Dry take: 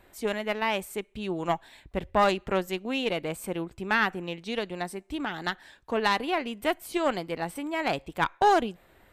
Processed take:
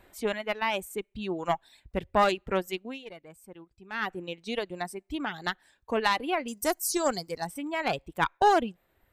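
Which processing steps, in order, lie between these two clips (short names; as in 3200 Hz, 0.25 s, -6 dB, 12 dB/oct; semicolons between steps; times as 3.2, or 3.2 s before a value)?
reverb removal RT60 1.6 s; 2.76–4.15 dip -14.5 dB, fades 0.23 s; 6.48–7.47 resonant high shelf 4100 Hz +11.5 dB, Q 3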